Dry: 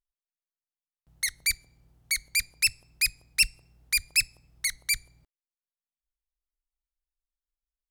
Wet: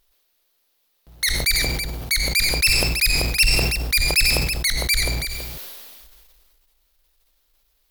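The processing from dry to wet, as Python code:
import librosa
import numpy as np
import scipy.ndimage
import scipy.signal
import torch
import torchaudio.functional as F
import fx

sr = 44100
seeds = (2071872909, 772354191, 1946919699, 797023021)

p1 = fx.graphic_eq_10(x, sr, hz=(125, 500, 4000, 8000, 16000), db=(-7, 5, 6, -6, 8))
p2 = fx.power_curve(p1, sr, exponent=0.7)
p3 = p2 + fx.echo_single(p2, sr, ms=328, db=-20.5, dry=0)
y = fx.sustainer(p3, sr, db_per_s=26.0)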